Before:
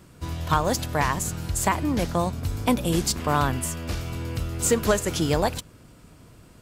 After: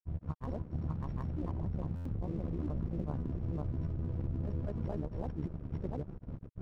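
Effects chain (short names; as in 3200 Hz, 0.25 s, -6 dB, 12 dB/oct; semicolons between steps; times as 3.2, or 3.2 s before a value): sample sorter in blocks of 8 samples; Bessel low-pass 610 Hz, order 2; low shelf 210 Hz +9 dB; AGC gain up to 10.5 dB; limiter -17 dBFS, peak gain reduction 15.5 dB; compressor 4:1, threshold -35 dBFS, peak gain reduction 13 dB; AM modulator 69 Hz, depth 55%; crossover distortion -58.5 dBFS; grains, spray 0.783 s; stuck buffer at 1.95, samples 512, times 8; gain +4 dB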